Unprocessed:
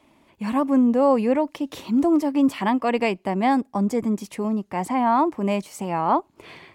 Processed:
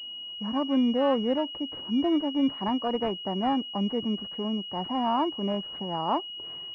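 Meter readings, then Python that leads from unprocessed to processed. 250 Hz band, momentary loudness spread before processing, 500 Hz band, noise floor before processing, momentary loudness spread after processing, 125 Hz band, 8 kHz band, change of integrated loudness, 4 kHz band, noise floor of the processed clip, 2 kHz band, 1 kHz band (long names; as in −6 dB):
−6.0 dB, 8 LU, −6.0 dB, −61 dBFS, 7 LU, −6.0 dB, below −25 dB, −6.0 dB, +10.5 dB, −39 dBFS, −12.0 dB, −7.0 dB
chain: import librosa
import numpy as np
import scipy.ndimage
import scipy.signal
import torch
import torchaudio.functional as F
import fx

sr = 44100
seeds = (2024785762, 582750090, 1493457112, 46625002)

y = fx.pwm(x, sr, carrier_hz=2900.0)
y = y * 10.0 ** (-6.0 / 20.0)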